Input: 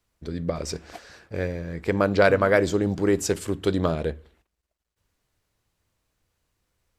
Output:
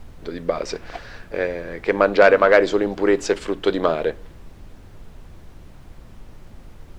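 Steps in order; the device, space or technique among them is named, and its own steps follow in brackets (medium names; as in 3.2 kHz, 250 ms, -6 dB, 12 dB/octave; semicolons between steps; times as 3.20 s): aircraft cabin announcement (band-pass 390–3700 Hz; saturation -10 dBFS, distortion -20 dB; brown noise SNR 17 dB); trim +8 dB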